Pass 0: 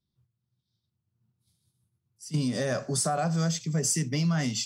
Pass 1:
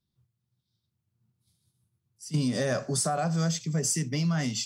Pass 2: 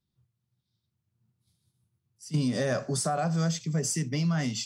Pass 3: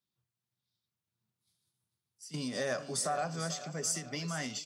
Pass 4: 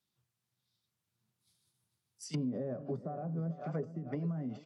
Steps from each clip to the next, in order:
gain riding
treble shelf 5.4 kHz -4.5 dB
high-pass 560 Hz 6 dB/octave; feedback delay 443 ms, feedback 49%, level -13 dB; endings held to a fixed fall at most 150 dB/s; trim -2 dB
low-pass that closes with the level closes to 330 Hz, closed at -33 dBFS; trim +4 dB

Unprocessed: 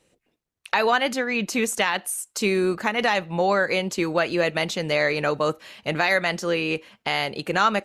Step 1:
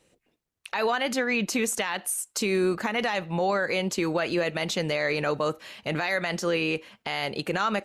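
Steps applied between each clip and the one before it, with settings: peak limiter -16.5 dBFS, peak gain reduction 9.5 dB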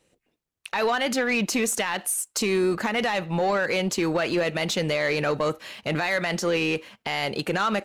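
waveshaping leveller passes 1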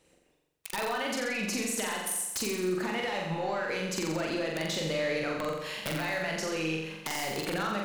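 compression 10:1, threshold -32 dBFS, peak gain reduction 12.5 dB; integer overflow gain 25.5 dB; flutter echo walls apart 7.5 m, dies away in 0.98 s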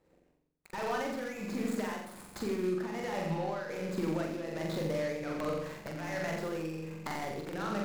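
median filter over 15 samples; filtered feedback delay 87 ms, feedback 67%, low-pass 1.1 kHz, level -11 dB; tremolo triangle 1.3 Hz, depth 60%

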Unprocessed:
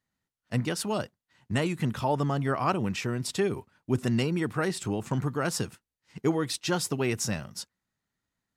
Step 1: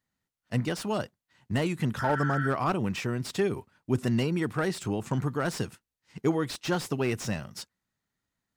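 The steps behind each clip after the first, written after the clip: spectral replace 2.01–2.46 s, 1.3–4.6 kHz after; slew-rate limiter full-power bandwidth 90 Hz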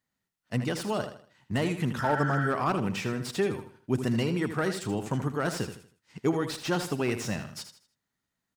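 bass shelf 76 Hz -6.5 dB; on a send: feedback delay 79 ms, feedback 34%, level -9.5 dB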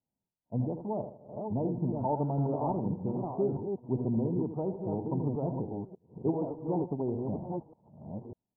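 chunks repeated in reverse 595 ms, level -4 dB; Chebyshev low-pass 940 Hz, order 6; trim -3 dB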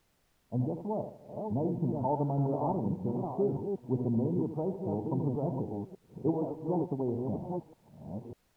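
added noise pink -72 dBFS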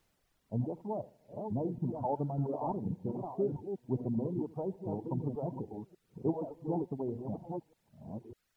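reverb removal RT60 1.2 s; warped record 78 rpm, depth 100 cents; trim -2 dB

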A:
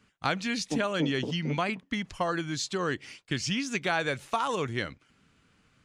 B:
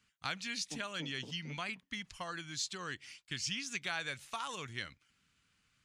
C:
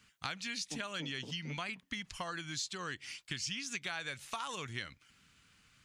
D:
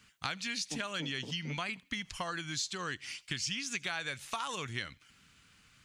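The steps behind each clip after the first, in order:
amplifier tone stack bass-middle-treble 5-5-5; trim +2.5 dB
compression 2.5:1, threshold -49 dBFS, peak gain reduction 11.5 dB; trim +8.5 dB
feedback echo behind a high-pass 80 ms, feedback 37%, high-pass 2.3 kHz, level -23.5 dB; trim +3 dB

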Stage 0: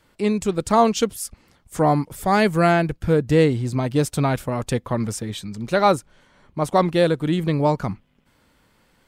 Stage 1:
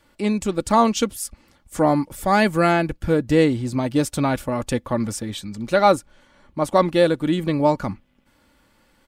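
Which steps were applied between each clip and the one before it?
comb 3.5 ms, depth 40%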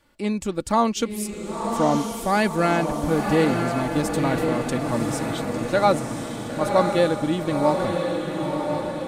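echo that smears into a reverb 1020 ms, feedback 59%, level -4 dB; trim -3.5 dB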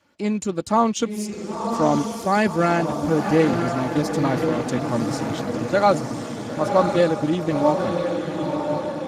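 trim +1 dB; Speex 15 kbps 32 kHz

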